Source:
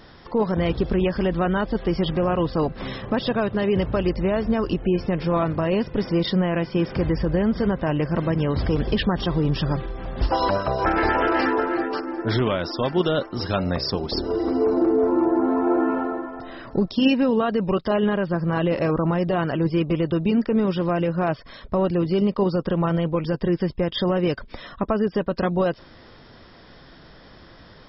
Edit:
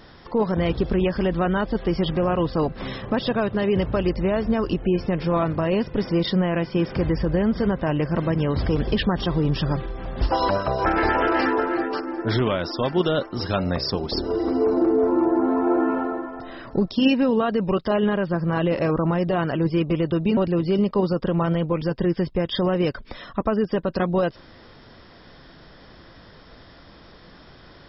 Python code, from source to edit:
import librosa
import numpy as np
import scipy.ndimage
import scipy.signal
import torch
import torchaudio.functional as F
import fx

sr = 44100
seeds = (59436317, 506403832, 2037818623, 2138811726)

y = fx.edit(x, sr, fx.cut(start_s=20.37, length_s=1.43), tone=tone)